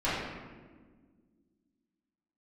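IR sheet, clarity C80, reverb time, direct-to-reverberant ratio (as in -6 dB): 1.5 dB, 1.5 s, -13.0 dB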